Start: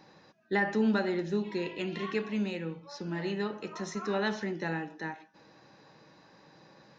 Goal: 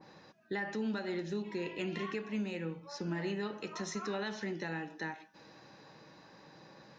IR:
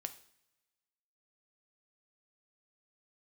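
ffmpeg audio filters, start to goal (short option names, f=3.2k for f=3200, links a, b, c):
-filter_complex "[0:a]asettb=1/sr,asplit=3[a][b][c];[a]atrim=end=1.424[d];[b]atrim=start=1.42:end=3.43,asetpts=PTS-STARTPTS,afade=t=in:d=0.004:c=qsin,afade=t=out:st=2.006:d=0.004:c=qsin,equalizer=f=3.8k:w=1.4:g=-6.5[e];[c]atrim=start=3.426[f];[d][e]acrossfade=d=0.004:c1=hsin:c2=qsin[g];[g][f]acrossfade=d=0.004:c1=qsin:c2=hsin,alimiter=level_in=5.5dB:limit=-24dB:level=0:latency=1:release=411,volume=-5.5dB,adynamicequalizer=threshold=0.002:dfrequency=1900:dqfactor=0.7:tfrequency=1900:tqfactor=0.7:attack=5:release=100:ratio=0.375:range=2:mode=boostabove:tftype=highshelf,volume=1dB"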